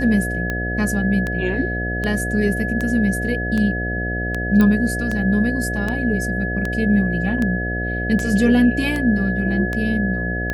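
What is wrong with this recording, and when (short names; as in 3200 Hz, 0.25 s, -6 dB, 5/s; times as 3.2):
buzz 60 Hz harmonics 12 -25 dBFS
tick 78 rpm -11 dBFS
tone 1700 Hz -25 dBFS
4.61 pop -7 dBFS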